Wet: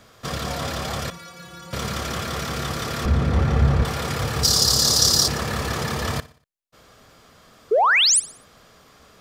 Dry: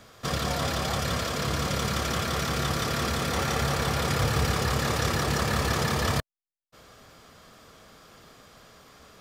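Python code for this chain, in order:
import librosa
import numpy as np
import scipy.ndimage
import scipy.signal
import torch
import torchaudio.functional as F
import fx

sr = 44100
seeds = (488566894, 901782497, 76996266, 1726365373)

p1 = fx.riaa(x, sr, side='playback', at=(3.05, 3.85))
p2 = fx.spec_paint(p1, sr, seeds[0], shape='rise', start_s=7.71, length_s=0.49, low_hz=390.0, high_hz=11000.0, level_db=-16.0)
p3 = 10.0 ** (-18.0 / 20.0) * np.tanh(p2 / 10.0 ** (-18.0 / 20.0))
p4 = p2 + F.gain(torch.from_numpy(p3), -12.0).numpy()
p5 = fx.stiff_resonator(p4, sr, f0_hz=170.0, decay_s=0.32, stiffness=0.008, at=(1.1, 1.73))
p6 = fx.high_shelf_res(p5, sr, hz=3400.0, db=13.0, q=3.0, at=(4.43, 5.28))
p7 = p6 + fx.echo_feedback(p6, sr, ms=60, feedback_pct=45, wet_db=-19, dry=0)
y = F.gain(torch.from_numpy(p7), -1.5).numpy()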